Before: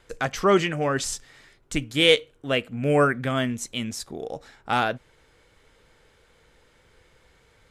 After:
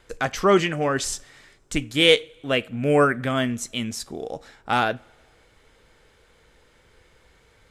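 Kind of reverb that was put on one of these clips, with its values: two-slope reverb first 0.32 s, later 1.8 s, from -19 dB, DRR 18.5 dB; gain +1.5 dB

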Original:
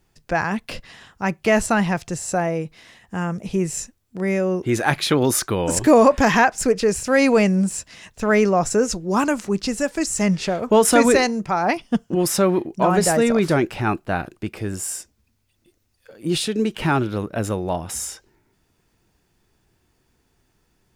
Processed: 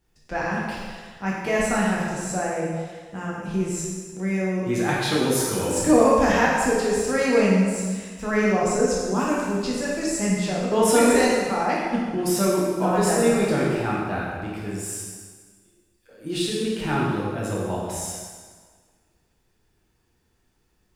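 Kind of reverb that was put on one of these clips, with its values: plate-style reverb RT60 1.6 s, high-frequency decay 0.85×, DRR -5.5 dB; gain -9.5 dB

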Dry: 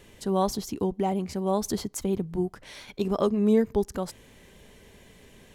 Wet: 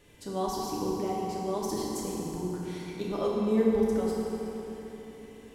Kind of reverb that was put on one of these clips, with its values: FDN reverb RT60 3.7 s, high-frequency decay 0.65×, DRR -5.5 dB; gain -8.5 dB

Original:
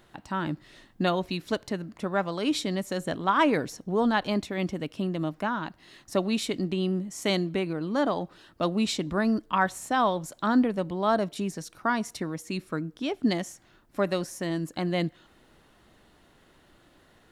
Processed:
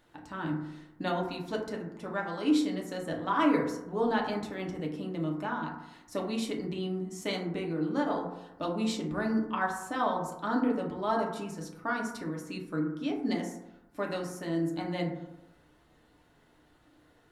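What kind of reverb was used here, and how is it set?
FDN reverb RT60 0.91 s, low-frequency decay 1×, high-frequency decay 0.3×, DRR -1.5 dB; gain -8.5 dB

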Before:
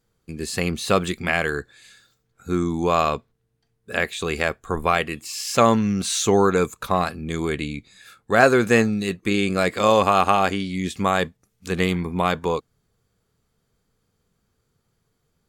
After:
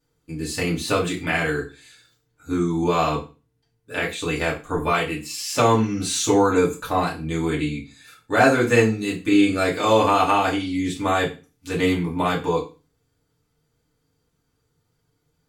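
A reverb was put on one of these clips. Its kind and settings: FDN reverb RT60 0.31 s, low-frequency decay 1.2×, high-frequency decay 1×, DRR -5.5 dB; gain -6.5 dB

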